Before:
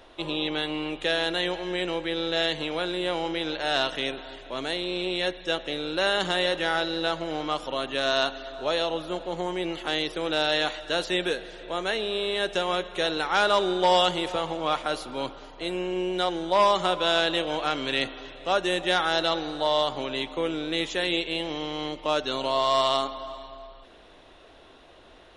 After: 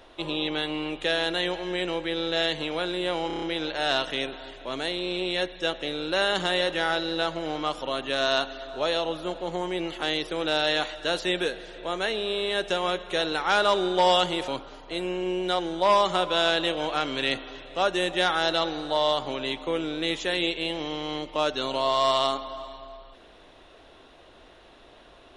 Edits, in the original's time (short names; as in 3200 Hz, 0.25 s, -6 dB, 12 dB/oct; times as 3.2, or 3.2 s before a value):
3.27 stutter 0.03 s, 6 plays
14.33–15.18 cut